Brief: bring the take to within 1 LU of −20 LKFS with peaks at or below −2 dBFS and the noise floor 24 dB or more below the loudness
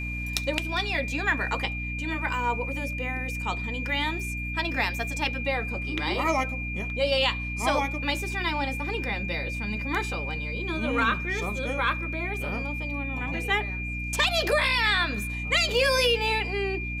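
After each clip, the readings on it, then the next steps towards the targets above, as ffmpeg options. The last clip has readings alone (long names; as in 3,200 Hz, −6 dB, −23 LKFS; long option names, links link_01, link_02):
mains hum 60 Hz; hum harmonics up to 300 Hz; level of the hum −31 dBFS; interfering tone 2,400 Hz; level of the tone −33 dBFS; integrated loudness −26.5 LKFS; sample peak −6.0 dBFS; target loudness −20.0 LKFS
→ -af "bandreject=frequency=60:width_type=h:width=6,bandreject=frequency=120:width_type=h:width=6,bandreject=frequency=180:width_type=h:width=6,bandreject=frequency=240:width_type=h:width=6,bandreject=frequency=300:width_type=h:width=6"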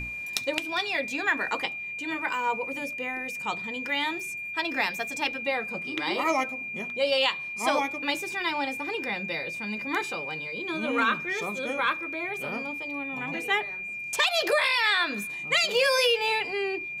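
mains hum none found; interfering tone 2,400 Hz; level of the tone −33 dBFS
→ -af "bandreject=frequency=2400:width=30"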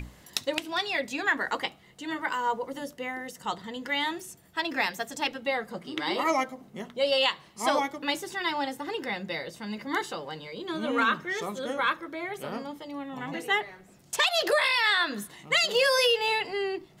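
interfering tone none found; integrated loudness −28.5 LKFS; sample peak −6.0 dBFS; target loudness −20.0 LKFS
→ -af "volume=8.5dB,alimiter=limit=-2dB:level=0:latency=1"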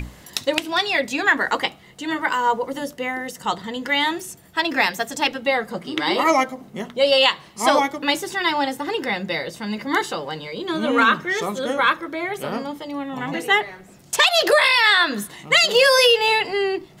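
integrated loudness −20.0 LKFS; sample peak −2.0 dBFS; background noise floor −47 dBFS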